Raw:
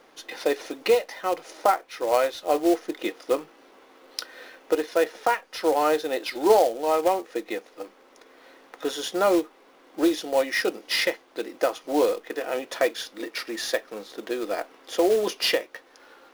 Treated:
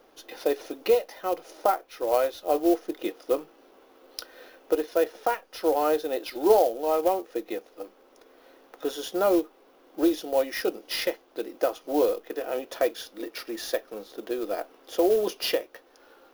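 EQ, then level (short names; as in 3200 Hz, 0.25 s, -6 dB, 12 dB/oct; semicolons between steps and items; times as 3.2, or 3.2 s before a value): graphic EQ 125/250/500/1000/2000/4000/8000 Hz -10/-5/-3/-7/-11/-6/-11 dB; +5.0 dB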